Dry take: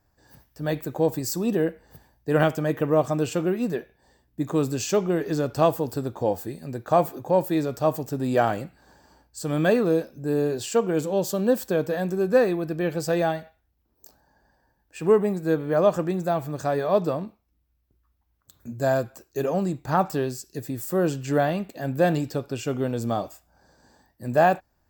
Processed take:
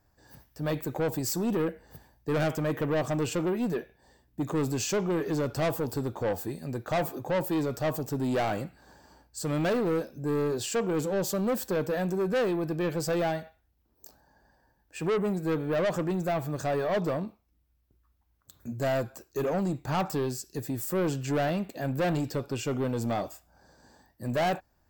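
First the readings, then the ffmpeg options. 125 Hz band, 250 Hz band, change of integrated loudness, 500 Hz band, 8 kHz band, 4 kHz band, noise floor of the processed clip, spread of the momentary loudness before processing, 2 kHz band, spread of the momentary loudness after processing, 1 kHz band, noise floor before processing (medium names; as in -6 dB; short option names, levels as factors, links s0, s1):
-3.0 dB, -4.0 dB, -5.0 dB, -6.0 dB, -1.0 dB, -1.0 dB, -70 dBFS, 11 LU, -4.0 dB, 7 LU, -6.5 dB, -70 dBFS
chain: -af "asoftclip=type=tanh:threshold=0.0668"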